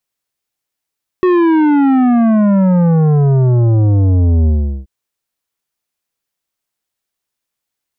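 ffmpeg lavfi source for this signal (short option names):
-f lavfi -i "aevalsrc='0.355*clip((3.63-t)/0.39,0,1)*tanh(3.55*sin(2*PI*370*3.63/log(65/370)*(exp(log(65/370)*t/3.63)-1)))/tanh(3.55)':d=3.63:s=44100"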